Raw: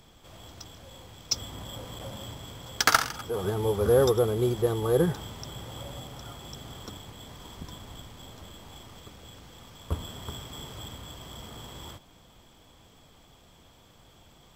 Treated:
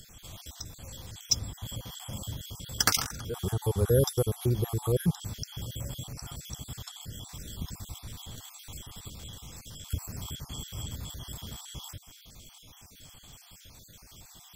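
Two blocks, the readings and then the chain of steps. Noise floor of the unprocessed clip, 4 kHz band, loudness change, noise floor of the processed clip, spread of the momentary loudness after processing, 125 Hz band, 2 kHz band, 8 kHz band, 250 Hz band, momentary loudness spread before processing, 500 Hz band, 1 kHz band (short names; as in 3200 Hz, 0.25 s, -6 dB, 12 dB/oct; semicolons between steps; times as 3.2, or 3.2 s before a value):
-57 dBFS, 0.0 dB, -4.5 dB, -54 dBFS, 23 LU, +2.5 dB, -7.0 dB, +2.5 dB, -3.0 dB, 24 LU, -6.5 dB, -8.5 dB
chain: random spectral dropouts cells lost 37%; tone controls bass +12 dB, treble +10 dB; mismatched tape noise reduction encoder only; gain -5.5 dB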